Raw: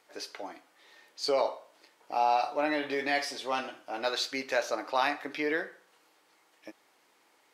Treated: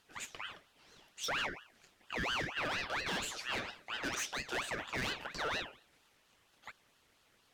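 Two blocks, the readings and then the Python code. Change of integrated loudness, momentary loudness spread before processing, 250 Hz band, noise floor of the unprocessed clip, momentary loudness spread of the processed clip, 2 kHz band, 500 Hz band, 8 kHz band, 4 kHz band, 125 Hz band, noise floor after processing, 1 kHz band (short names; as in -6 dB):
-7.0 dB, 13 LU, -9.0 dB, -67 dBFS, 17 LU, -3.0 dB, -13.5 dB, +1.0 dB, -2.5 dB, +9.5 dB, -71 dBFS, -11.5 dB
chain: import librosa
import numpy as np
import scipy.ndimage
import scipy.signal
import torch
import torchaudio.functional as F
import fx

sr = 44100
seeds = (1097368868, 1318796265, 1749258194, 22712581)

y = np.clip(10.0 ** (29.5 / 20.0) * x, -1.0, 1.0) / 10.0 ** (29.5 / 20.0)
y = fx.ring_lfo(y, sr, carrier_hz=1600.0, swing_pct=45, hz=4.3)
y = y * librosa.db_to_amplitude(-1.0)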